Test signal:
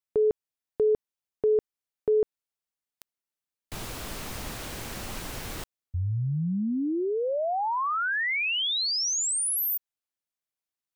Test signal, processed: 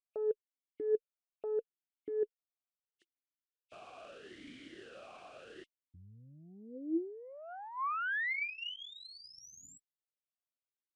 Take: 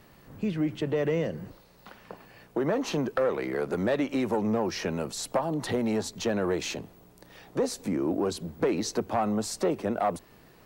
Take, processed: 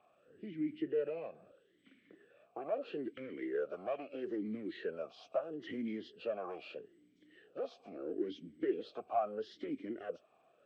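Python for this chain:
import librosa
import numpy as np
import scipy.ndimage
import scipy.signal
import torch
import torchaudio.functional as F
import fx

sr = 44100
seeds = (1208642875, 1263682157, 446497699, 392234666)

y = fx.freq_compress(x, sr, knee_hz=2100.0, ratio=1.5)
y = fx.tube_stage(y, sr, drive_db=18.0, bias=0.65)
y = fx.vowel_sweep(y, sr, vowels='a-i', hz=0.77)
y = y * librosa.db_to_amplitude(2.5)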